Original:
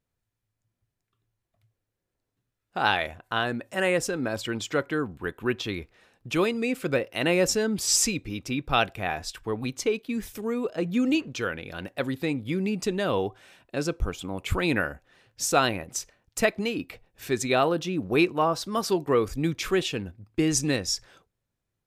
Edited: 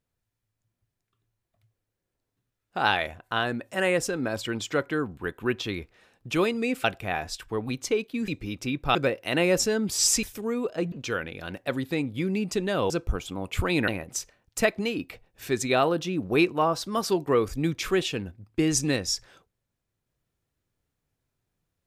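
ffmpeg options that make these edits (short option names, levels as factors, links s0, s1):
-filter_complex "[0:a]asplit=8[s0][s1][s2][s3][s4][s5][s6][s7];[s0]atrim=end=6.842[s8];[s1]atrim=start=8.788:end=10.232[s9];[s2]atrim=start=8.118:end=8.792[s10];[s3]atrim=start=6.838:end=8.122[s11];[s4]atrim=start=10.228:end=10.922[s12];[s5]atrim=start=11.228:end=13.212[s13];[s6]atrim=start=13.828:end=14.812[s14];[s7]atrim=start=15.678[s15];[s8][s9]acrossfade=d=0.004:c1=hsin:c2=hsin[s16];[s16][s10]acrossfade=d=0.004:c1=hsin:c2=hsin[s17];[s17][s11]acrossfade=d=0.004:c1=hsin:c2=hsin[s18];[s18][s12]acrossfade=d=0.004:c1=hsin:c2=hsin[s19];[s19][s13]acrossfade=d=0.004:c1=hsin:c2=hsin[s20];[s20][s14]acrossfade=d=0.004:c1=hsin:c2=hsin[s21];[s21][s15]acrossfade=d=0.004:c1=hsin:c2=hsin"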